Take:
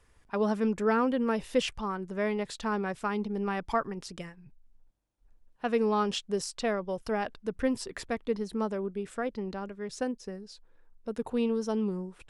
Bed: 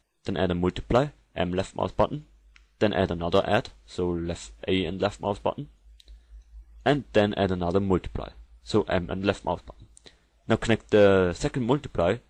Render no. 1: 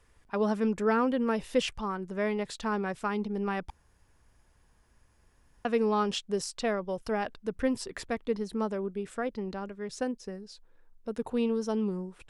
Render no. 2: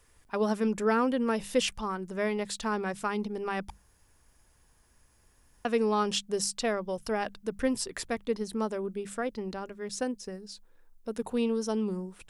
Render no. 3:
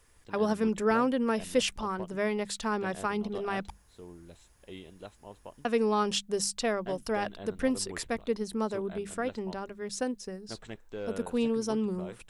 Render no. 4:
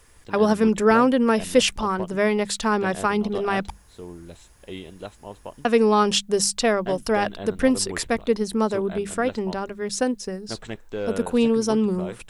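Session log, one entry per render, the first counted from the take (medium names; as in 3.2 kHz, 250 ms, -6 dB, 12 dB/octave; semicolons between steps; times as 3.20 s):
3.70–5.65 s: room tone
treble shelf 5.8 kHz +11 dB; hum notches 50/100/150/200 Hz
add bed -20.5 dB
trim +9 dB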